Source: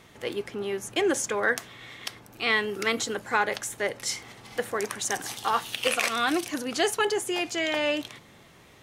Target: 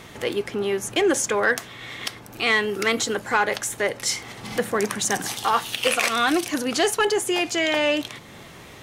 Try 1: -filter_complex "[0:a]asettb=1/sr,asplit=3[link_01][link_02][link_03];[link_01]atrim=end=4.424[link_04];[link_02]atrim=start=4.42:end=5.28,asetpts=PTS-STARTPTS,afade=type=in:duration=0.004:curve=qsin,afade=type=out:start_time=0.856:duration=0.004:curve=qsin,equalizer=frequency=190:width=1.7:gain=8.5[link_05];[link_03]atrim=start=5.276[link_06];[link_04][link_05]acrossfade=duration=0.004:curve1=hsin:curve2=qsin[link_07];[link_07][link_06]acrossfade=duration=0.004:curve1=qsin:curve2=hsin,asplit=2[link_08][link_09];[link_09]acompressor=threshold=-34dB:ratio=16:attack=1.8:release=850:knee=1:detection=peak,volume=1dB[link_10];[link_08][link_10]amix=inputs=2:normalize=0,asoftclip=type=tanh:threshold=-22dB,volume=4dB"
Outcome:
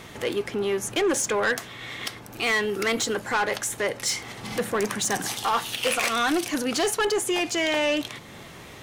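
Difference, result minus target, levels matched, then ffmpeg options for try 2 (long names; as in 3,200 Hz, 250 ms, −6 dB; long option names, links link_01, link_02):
soft clipping: distortion +11 dB
-filter_complex "[0:a]asettb=1/sr,asplit=3[link_01][link_02][link_03];[link_01]atrim=end=4.424[link_04];[link_02]atrim=start=4.42:end=5.28,asetpts=PTS-STARTPTS,afade=type=in:duration=0.004:curve=qsin,afade=type=out:start_time=0.856:duration=0.004:curve=qsin,equalizer=frequency=190:width=1.7:gain=8.5[link_05];[link_03]atrim=start=5.276[link_06];[link_04][link_05]acrossfade=duration=0.004:curve1=hsin:curve2=qsin[link_07];[link_07][link_06]acrossfade=duration=0.004:curve1=qsin:curve2=hsin,asplit=2[link_08][link_09];[link_09]acompressor=threshold=-34dB:ratio=16:attack=1.8:release=850:knee=1:detection=peak,volume=1dB[link_10];[link_08][link_10]amix=inputs=2:normalize=0,asoftclip=type=tanh:threshold=-13dB,volume=4dB"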